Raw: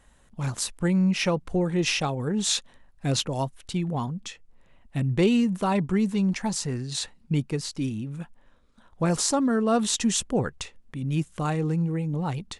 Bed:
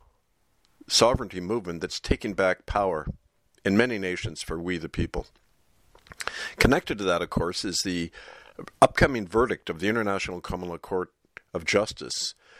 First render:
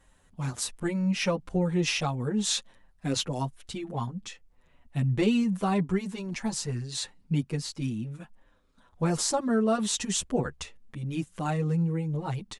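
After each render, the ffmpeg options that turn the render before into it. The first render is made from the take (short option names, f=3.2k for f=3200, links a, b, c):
-filter_complex "[0:a]asplit=2[a][b];[b]adelay=7.3,afreqshift=-0.71[c];[a][c]amix=inputs=2:normalize=1"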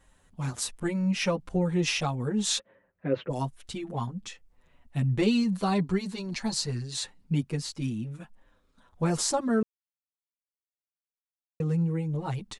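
-filter_complex "[0:a]asplit=3[a][b][c];[a]afade=t=out:st=2.58:d=0.02[d];[b]highpass=130,equalizer=f=240:t=q:w=4:g=-4,equalizer=f=380:t=q:w=4:g=5,equalizer=f=540:t=q:w=4:g=10,equalizer=f=780:t=q:w=4:g=-7,equalizer=f=1.1k:t=q:w=4:g=-3,lowpass=f=2.2k:w=0.5412,lowpass=f=2.2k:w=1.3066,afade=t=in:st=2.58:d=0.02,afade=t=out:st=3.29:d=0.02[e];[c]afade=t=in:st=3.29:d=0.02[f];[d][e][f]amix=inputs=3:normalize=0,asettb=1/sr,asplit=3[g][h][i];[g]atrim=end=5.264[j];[h]atrim=start=5.26:end=6.83,asetpts=PTS-STARTPTS,afade=t=in:d=0.004:c=qsin,afade=t=out:st=1.566:d=0.004:c=qsin,equalizer=f=4.3k:t=o:w=0.3:g=12[k];[i]atrim=start=6.826[l];[j][k]acrossfade=d=0.004:c1=hsin:c2=qsin[m];[m][l]acrossfade=d=0.004:c1=qsin:c2=hsin,asplit=3[n][o][p];[n]atrim=end=9.63,asetpts=PTS-STARTPTS,afade=t=out:st=9.626:d=0.004:c=hsin[q];[o]atrim=start=9.63:end=11.6,asetpts=PTS-STARTPTS,volume=0[r];[p]atrim=start=11.6,asetpts=PTS-STARTPTS,afade=t=in:d=0.004:c=hsin[s];[q][r][s]concat=n=3:v=0:a=1"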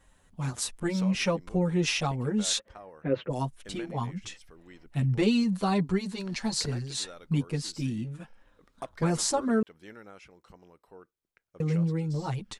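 -filter_complex "[1:a]volume=-22.5dB[a];[0:a][a]amix=inputs=2:normalize=0"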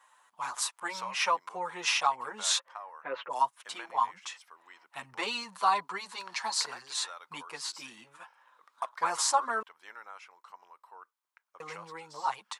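-af "highpass=f=1k:t=q:w=3.8"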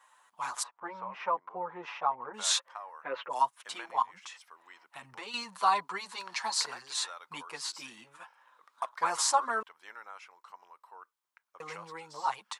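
-filter_complex "[0:a]asplit=3[a][b][c];[a]afade=t=out:st=0.62:d=0.02[d];[b]lowpass=1.1k,afade=t=in:st=0.62:d=0.02,afade=t=out:st=2.33:d=0.02[e];[c]afade=t=in:st=2.33:d=0.02[f];[d][e][f]amix=inputs=3:normalize=0,asettb=1/sr,asplit=3[g][h][i];[g]atrim=end=4.024[j];[h]atrim=start=4.02:end=5.34,asetpts=PTS-STARTPTS,afade=t=in:d=0.004:c=qsin,afade=t=out:st=1.316:d=0.004:c=qsin,acompressor=threshold=-42dB:ratio=3:attack=3.2:release=140:knee=1:detection=peak[k];[i]atrim=start=5.336[l];[j][k]acrossfade=d=0.004:c1=hsin:c2=qsin[m];[m][l]acrossfade=d=0.004:c1=qsin:c2=hsin"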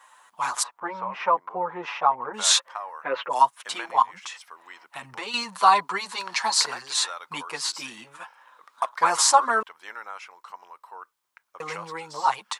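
-af "volume=9dB"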